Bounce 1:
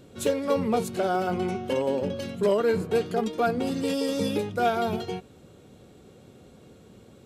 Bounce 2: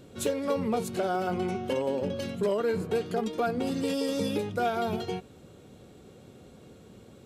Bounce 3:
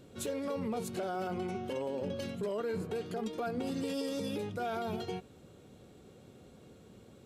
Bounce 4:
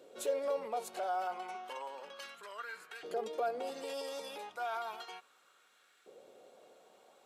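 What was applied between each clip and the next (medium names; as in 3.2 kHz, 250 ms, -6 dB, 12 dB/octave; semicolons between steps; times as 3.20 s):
compression 2:1, threshold -27 dBFS, peak gain reduction 5.5 dB
peak limiter -23 dBFS, peak gain reduction 7.5 dB; trim -4.5 dB
LFO high-pass saw up 0.33 Hz 490–1600 Hz; trim -2.5 dB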